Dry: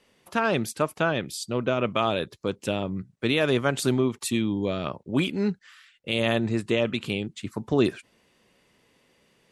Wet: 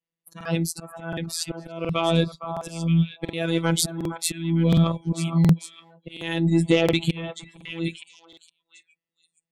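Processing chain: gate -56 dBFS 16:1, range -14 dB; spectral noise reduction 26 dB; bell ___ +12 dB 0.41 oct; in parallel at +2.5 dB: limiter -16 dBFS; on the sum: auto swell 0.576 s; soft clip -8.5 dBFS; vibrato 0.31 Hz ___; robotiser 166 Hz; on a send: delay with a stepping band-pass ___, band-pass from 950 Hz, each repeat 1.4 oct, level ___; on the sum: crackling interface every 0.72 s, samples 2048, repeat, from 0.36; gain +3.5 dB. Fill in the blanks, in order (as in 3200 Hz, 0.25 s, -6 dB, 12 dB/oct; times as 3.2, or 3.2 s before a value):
190 Hz, 15 cents, 0.462 s, -5.5 dB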